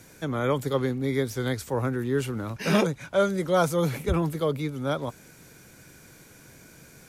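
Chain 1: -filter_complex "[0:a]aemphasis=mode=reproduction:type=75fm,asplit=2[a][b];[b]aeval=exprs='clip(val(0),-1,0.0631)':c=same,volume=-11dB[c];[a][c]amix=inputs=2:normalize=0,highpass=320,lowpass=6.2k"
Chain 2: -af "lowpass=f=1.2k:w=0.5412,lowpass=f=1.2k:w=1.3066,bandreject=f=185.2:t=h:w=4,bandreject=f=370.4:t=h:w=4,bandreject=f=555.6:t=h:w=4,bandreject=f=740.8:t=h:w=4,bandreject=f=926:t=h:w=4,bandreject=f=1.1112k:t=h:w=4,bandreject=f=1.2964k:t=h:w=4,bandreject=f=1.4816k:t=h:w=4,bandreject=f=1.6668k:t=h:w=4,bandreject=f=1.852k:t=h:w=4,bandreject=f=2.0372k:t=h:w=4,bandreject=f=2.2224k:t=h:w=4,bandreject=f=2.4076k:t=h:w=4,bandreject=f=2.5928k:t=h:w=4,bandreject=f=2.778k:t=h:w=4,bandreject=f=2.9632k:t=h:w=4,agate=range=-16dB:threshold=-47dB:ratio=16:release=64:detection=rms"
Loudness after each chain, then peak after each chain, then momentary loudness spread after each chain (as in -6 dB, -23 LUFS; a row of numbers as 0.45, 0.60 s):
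-27.0, -27.5 LUFS; -9.0, -11.5 dBFS; 8, 7 LU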